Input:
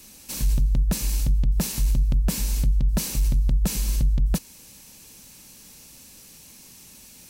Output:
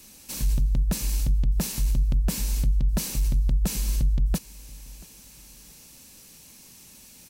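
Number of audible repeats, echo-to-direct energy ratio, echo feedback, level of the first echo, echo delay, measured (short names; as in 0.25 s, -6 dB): 2, -22.5 dB, 32%, -23.0 dB, 0.683 s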